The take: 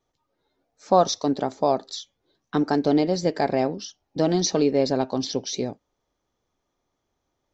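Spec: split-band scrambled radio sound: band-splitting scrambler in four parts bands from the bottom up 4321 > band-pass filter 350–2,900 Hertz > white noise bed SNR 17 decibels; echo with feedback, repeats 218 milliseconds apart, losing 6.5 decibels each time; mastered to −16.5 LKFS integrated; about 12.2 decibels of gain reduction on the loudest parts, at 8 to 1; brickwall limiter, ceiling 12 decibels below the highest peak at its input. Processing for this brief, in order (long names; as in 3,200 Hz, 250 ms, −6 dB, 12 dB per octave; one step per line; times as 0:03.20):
downward compressor 8 to 1, threshold −25 dBFS
brickwall limiter −24.5 dBFS
repeating echo 218 ms, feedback 47%, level −6.5 dB
band-splitting scrambler in four parts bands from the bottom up 4321
band-pass filter 350–2,900 Hz
white noise bed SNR 17 dB
level +23.5 dB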